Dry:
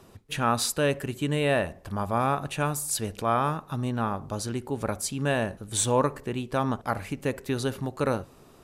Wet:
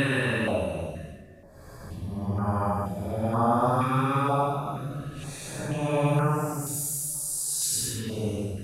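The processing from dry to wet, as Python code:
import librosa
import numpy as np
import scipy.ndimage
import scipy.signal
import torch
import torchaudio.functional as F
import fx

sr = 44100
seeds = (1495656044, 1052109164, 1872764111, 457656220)

y = fx.spec_steps(x, sr, hold_ms=50)
y = fx.paulstretch(y, sr, seeds[0], factor=5.4, window_s=0.1, from_s=1.52)
y = fx.filter_held_notch(y, sr, hz=2.1, low_hz=670.0, high_hz=3700.0)
y = y * librosa.db_to_amplitude(2.5)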